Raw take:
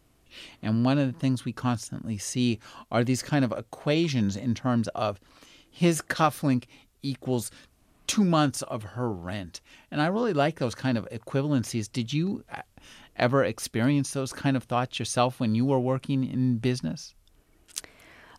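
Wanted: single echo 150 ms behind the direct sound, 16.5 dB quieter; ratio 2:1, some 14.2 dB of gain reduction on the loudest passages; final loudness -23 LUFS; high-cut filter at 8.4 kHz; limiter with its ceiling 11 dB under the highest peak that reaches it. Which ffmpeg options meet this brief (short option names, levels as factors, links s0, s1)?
-af "lowpass=8400,acompressor=threshold=0.00562:ratio=2,alimiter=level_in=2.37:limit=0.0631:level=0:latency=1,volume=0.422,aecho=1:1:150:0.15,volume=8.91"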